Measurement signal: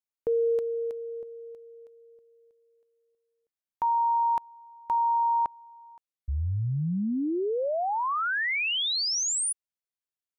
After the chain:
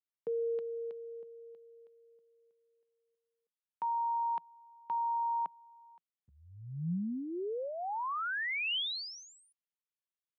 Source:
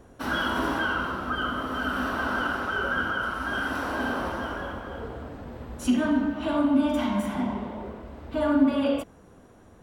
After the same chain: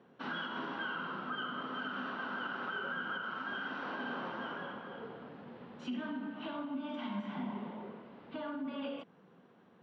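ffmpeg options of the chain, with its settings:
ffmpeg -i in.wav -af "alimiter=limit=-21.5dB:level=0:latency=1:release=236,highpass=frequency=160:width=0.5412,highpass=frequency=160:width=1.3066,equalizer=frequency=170:width_type=q:width=4:gain=5,equalizer=frequency=300:width_type=q:width=4:gain=-5,equalizer=frequency=630:width_type=q:width=4:gain=-5,equalizer=frequency=3000:width_type=q:width=4:gain=3,lowpass=frequency=4000:width=0.5412,lowpass=frequency=4000:width=1.3066,volume=-7.5dB" out.wav

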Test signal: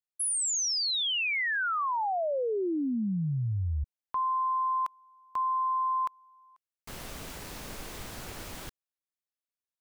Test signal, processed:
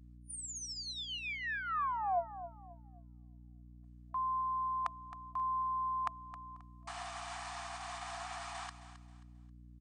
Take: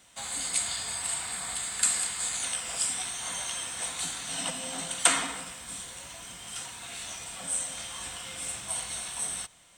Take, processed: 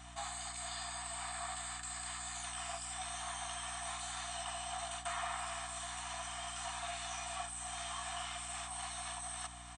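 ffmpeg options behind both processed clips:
ffmpeg -i in.wav -af "areverse,acompressor=threshold=-44dB:ratio=16:attack=7.4:release=90:knee=6:detection=peak,areverse,tiltshelf=frequency=1100:gain=9.5,aecho=1:1:1.7:0.36,aecho=1:1:267|534|801:0.224|0.0672|0.0201,afftfilt=real='re*between(b*sr/4096,670,9500)':imag='im*between(b*sr/4096,670,9500)':win_size=4096:overlap=0.75,aeval=exprs='val(0)+0.000708*(sin(2*PI*60*n/s)+sin(2*PI*2*60*n/s)/2+sin(2*PI*3*60*n/s)/3+sin(2*PI*4*60*n/s)/4+sin(2*PI*5*60*n/s)/5)':channel_layout=same,volume=9.5dB" out.wav

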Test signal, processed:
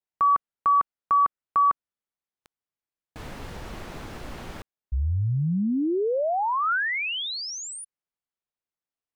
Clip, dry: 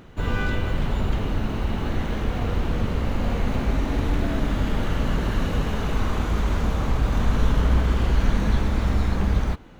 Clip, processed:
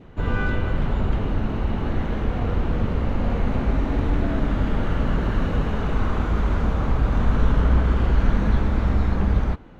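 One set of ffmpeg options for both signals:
ffmpeg -i in.wav -af "lowpass=frequency=1800:poles=1,adynamicequalizer=threshold=0.00891:dfrequency=1400:dqfactor=3.7:tfrequency=1400:tqfactor=3.7:attack=5:release=100:ratio=0.375:range=1.5:mode=boostabove:tftype=bell,volume=1.5dB" out.wav

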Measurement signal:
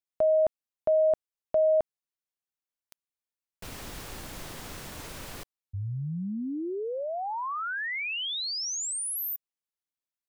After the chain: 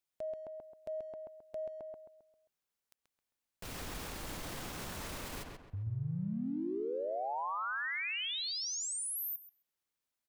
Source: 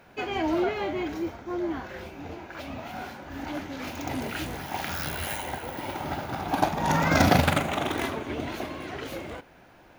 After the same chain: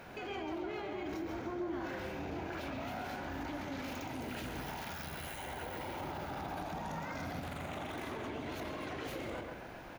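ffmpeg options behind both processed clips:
ffmpeg -i in.wav -filter_complex "[0:a]acompressor=threshold=-37dB:ratio=6:attack=0.11:release=54:detection=peak,alimiter=level_in=15dB:limit=-24dB:level=0:latency=1:release=176,volume=-15dB,asplit=2[link_01][link_02];[link_02]adelay=133,lowpass=frequency=2500:poles=1,volume=-3dB,asplit=2[link_03][link_04];[link_04]adelay=133,lowpass=frequency=2500:poles=1,volume=0.41,asplit=2[link_05][link_06];[link_06]adelay=133,lowpass=frequency=2500:poles=1,volume=0.41,asplit=2[link_07][link_08];[link_08]adelay=133,lowpass=frequency=2500:poles=1,volume=0.41,asplit=2[link_09][link_10];[link_10]adelay=133,lowpass=frequency=2500:poles=1,volume=0.41[link_11];[link_01][link_03][link_05][link_07][link_09][link_11]amix=inputs=6:normalize=0,volume=3.5dB" out.wav

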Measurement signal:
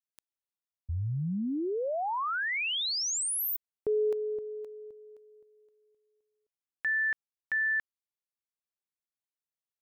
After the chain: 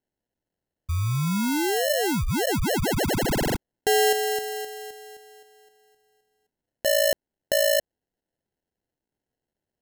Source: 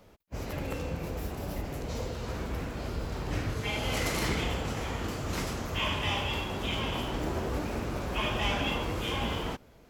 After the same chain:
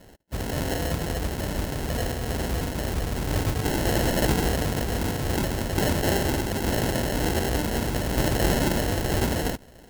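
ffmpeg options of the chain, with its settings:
ffmpeg -i in.wav -af "acrusher=samples=37:mix=1:aa=0.000001,highshelf=frequency=5500:gain=6.5,volume=7dB" out.wav

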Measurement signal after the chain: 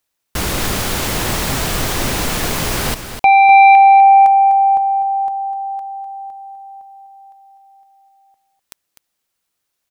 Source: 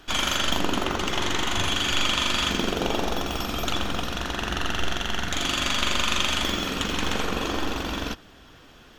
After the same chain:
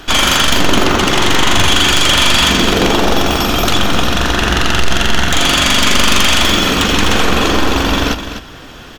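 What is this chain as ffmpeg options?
ffmpeg -i in.wav -af "aeval=exprs='0.501*sin(PI/2*3.98*val(0)/0.501)':channel_layout=same,aecho=1:1:251:0.316" out.wav

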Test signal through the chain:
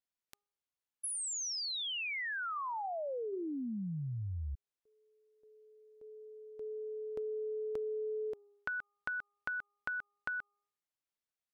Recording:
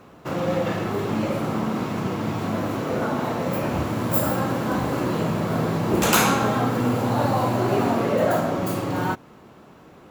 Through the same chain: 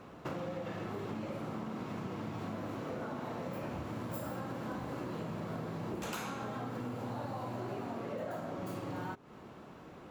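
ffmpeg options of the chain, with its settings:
ffmpeg -i in.wav -af "highshelf=frequency=8200:gain=-7.5,bandreject=frequency=408.4:width_type=h:width=4,bandreject=frequency=816.8:width_type=h:width=4,bandreject=frequency=1225.2:width_type=h:width=4,acompressor=threshold=-33dB:ratio=12,volume=-3.5dB" out.wav

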